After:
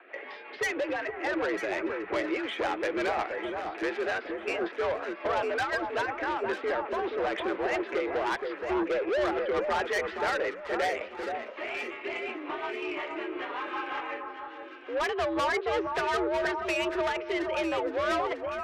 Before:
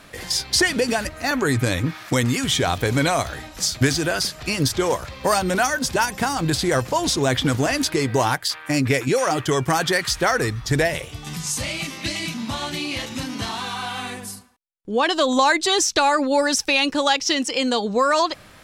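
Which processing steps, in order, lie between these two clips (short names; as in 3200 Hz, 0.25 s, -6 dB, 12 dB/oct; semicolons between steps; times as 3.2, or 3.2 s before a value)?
mistuned SSB +71 Hz 290–2500 Hz; 8.58–9.25 ten-band EQ 500 Hz +9 dB, 1000 Hz -4 dB, 2000 Hz -8 dB; in parallel at -9 dB: one-sided clip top -16.5 dBFS; on the sum: rotary speaker horn 5.5 Hz; soft clip -22.5 dBFS, distortion -8 dB; 6.58–6.99 air absorption 200 m; on a send: echo with dull and thin repeats by turns 0.474 s, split 1400 Hz, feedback 54%, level -4.5 dB; on the sum: gain -3 dB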